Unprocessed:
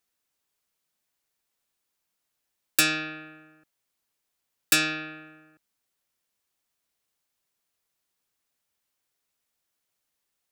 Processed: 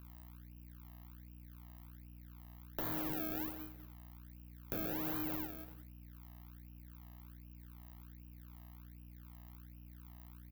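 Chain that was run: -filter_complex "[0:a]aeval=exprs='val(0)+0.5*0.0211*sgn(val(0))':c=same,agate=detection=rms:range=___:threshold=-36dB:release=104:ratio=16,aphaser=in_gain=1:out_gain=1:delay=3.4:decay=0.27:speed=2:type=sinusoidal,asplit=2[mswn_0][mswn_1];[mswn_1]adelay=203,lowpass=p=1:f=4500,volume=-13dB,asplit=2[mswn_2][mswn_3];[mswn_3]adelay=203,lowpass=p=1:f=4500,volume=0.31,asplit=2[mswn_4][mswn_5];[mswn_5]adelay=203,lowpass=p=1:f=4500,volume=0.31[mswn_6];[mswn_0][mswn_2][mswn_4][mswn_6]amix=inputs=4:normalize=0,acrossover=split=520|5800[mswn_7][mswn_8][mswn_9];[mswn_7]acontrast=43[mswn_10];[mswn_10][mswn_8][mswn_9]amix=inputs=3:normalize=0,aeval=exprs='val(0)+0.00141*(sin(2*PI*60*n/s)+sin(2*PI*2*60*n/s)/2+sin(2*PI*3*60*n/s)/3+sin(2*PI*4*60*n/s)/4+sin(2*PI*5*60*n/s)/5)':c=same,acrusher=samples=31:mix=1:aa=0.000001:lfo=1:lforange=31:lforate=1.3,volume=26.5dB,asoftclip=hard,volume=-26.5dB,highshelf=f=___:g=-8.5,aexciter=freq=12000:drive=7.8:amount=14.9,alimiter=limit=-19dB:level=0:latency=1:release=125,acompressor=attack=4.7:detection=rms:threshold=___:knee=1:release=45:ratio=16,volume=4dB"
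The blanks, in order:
-47dB, 5500, -38dB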